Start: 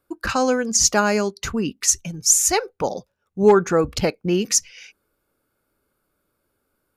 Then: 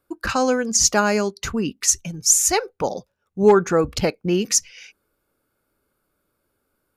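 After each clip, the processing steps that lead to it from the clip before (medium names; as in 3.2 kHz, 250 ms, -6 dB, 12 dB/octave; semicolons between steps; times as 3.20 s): no audible change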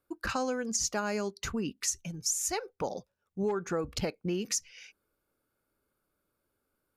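compression 6:1, threshold -20 dBFS, peak gain reduction 11 dB; trim -8 dB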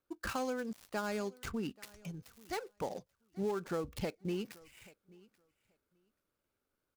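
dead-time distortion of 0.086 ms; feedback delay 833 ms, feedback 15%, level -23.5 dB; trim -4.5 dB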